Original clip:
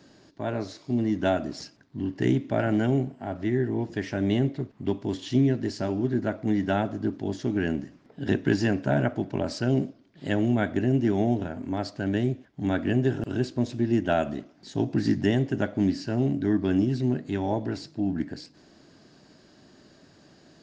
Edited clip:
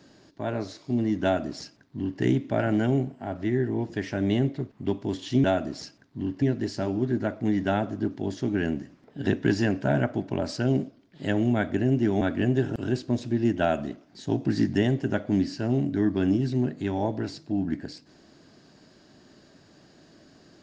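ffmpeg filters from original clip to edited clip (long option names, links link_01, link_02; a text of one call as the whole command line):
ffmpeg -i in.wav -filter_complex "[0:a]asplit=4[link_01][link_02][link_03][link_04];[link_01]atrim=end=5.442[link_05];[link_02]atrim=start=1.228:end=2.212[link_06];[link_03]atrim=start=5.438:end=11.232[link_07];[link_04]atrim=start=12.688[link_08];[link_05][link_06]acrossfade=duration=0.004:curve1=hsin:curve2=hsin[link_09];[link_09][link_07]acrossfade=duration=0.004:curve1=hsin:curve2=hsin[link_10];[link_10][link_08]acrossfade=duration=0.004:curve1=hsin:curve2=hsin" out.wav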